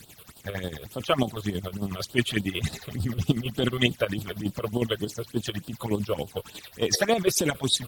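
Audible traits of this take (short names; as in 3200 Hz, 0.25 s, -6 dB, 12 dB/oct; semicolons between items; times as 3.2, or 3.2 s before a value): a quantiser's noise floor 8-bit, dither triangular; chopped level 11 Hz, depth 60%, duty 50%; phasing stages 8, 3.4 Hz, lowest notch 230–2100 Hz; AAC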